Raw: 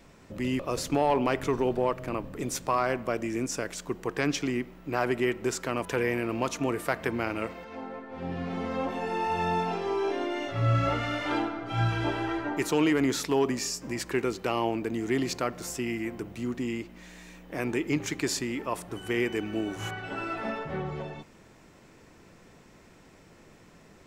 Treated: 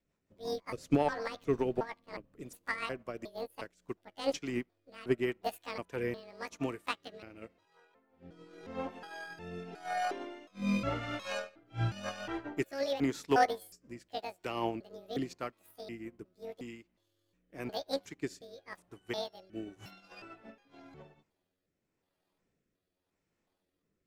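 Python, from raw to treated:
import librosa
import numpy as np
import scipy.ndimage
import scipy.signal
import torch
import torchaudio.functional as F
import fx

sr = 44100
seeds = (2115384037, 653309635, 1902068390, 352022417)

y = fx.pitch_trill(x, sr, semitones=10.5, every_ms=361)
y = fx.rotary_switch(y, sr, hz=5.5, then_hz=0.9, switch_at_s=3.35)
y = fx.upward_expand(y, sr, threshold_db=-43.0, expansion=2.5)
y = y * 10.0 ** (2.5 / 20.0)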